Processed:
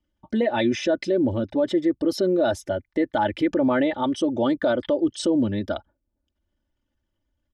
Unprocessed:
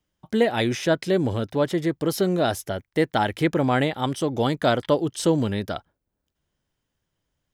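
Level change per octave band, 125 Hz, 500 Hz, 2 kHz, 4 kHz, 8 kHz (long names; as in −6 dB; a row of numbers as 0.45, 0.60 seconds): −7.5, 0.0, −2.5, −3.0, −4.5 decibels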